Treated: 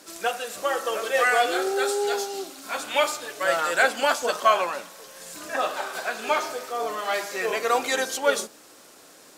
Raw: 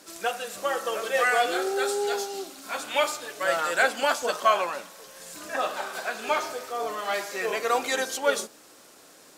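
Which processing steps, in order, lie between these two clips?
hum notches 50/100/150/200 Hz; trim +2 dB

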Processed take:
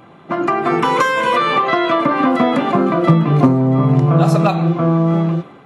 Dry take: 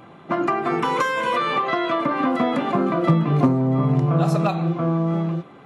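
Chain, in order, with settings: level rider gain up to 6 dB; trim +1.5 dB

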